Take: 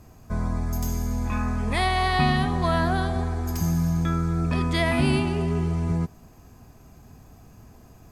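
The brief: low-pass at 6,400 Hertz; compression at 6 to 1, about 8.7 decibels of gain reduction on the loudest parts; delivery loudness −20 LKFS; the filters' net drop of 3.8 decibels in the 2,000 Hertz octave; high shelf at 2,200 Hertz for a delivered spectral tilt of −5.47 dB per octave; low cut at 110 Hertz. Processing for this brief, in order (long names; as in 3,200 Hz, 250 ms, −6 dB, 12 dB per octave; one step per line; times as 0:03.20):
high-pass filter 110 Hz
low-pass filter 6,400 Hz
parametric band 2,000 Hz −8.5 dB
high-shelf EQ 2,200 Hz +7.5 dB
downward compressor 6 to 1, threshold −27 dBFS
level +11.5 dB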